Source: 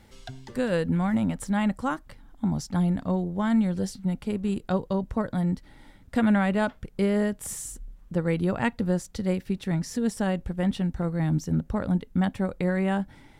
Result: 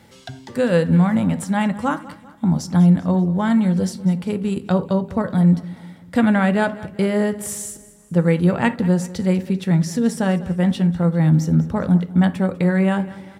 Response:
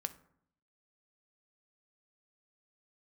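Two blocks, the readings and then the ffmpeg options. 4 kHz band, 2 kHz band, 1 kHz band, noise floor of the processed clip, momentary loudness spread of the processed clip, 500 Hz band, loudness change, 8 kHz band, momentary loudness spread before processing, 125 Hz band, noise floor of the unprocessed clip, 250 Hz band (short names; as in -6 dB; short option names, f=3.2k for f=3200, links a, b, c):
+6.5 dB, +7.0 dB, +6.5 dB, -45 dBFS, 8 LU, +7.0 dB, +8.0 dB, +6.5 dB, 7 LU, +10.0 dB, -53 dBFS, +8.0 dB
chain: -filter_complex "[0:a]highpass=f=79:w=0.5412,highpass=f=79:w=1.3066,aecho=1:1:197|394|591|788:0.119|0.057|0.0274|0.0131[a];[1:a]atrim=start_sample=2205,atrim=end_sample=4410[b];[a][b]afir=irnorm=-1:irlink=0,volume=7.5dB"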